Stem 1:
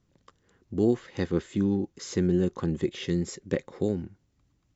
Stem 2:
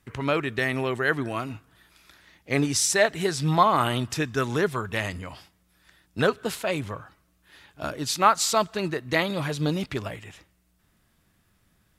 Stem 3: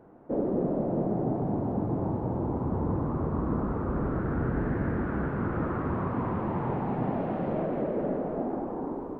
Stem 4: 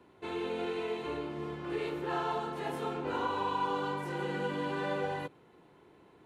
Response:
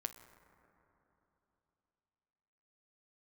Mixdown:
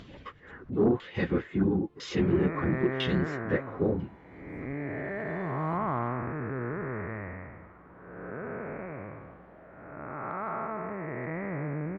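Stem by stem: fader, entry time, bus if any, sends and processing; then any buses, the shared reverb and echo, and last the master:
0.0 dB, 0.00 s, no send, random phases in long frames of 50 ms; auto-filter low-pass saw down 1 Hz 960–3,400 Hz; upward compression, threshold −32 dBFS
−3.0 dB, 2.15 s, no send, spectrum smeared in time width 509 ms; Butterworth low-pass 2,300 Hz 96 dB per octave
−19.0 dB, 2.00 s, no send, low-shelf EQ 430 Hz −11 dB
−14.0 dB, 0.50 s, no send, brickwall limiter −29 dBFS, peak gain reduction 7.5 dB; automatic ducking −12 dB, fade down 1.15 s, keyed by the first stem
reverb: not used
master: soft clipping −15 dBFS, distortion −20 dB

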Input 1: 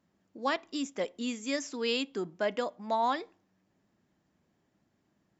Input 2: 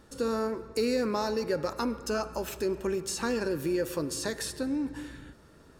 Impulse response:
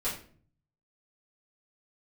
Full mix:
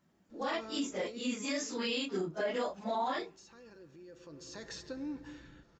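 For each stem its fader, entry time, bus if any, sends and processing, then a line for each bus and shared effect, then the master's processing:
+2.0 dB, 0.00 s, no send, random phases in long frames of 100 ms
−8.0 dB, 0.30 s, no send, elliptic low-pass filter 6,800 Hz, stop band 40 dB; comb filter 5.9 ms, depth 33%; brickwall limiter −24.5 dBFS, peak gain reduction 7 dB; automatic ducking −14 dB, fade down 1.80 s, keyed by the first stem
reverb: not used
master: brickwall limiter −25.5 dBFS, peak gain reduction 10.5 dB

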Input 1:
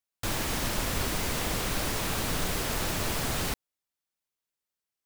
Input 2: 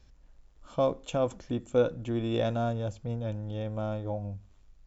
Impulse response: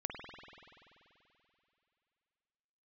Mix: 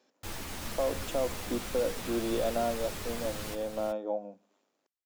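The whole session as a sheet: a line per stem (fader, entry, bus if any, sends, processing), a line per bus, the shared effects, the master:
−6.5 dB, 0.00 s, no send, echo send −8 dB, string-ensemble chorus
−3.5 dB, 0.00 s, no send, no echo send, Butterworth high-pass 220 Hz 36 dB per octave; parametric band 560 Hz +7 dB 1.7 octaves; brickwall limiter −18.5 dBFS, peak gain reduction 10 dB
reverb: not used
echo: single-tap delay 372 ms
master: no processing

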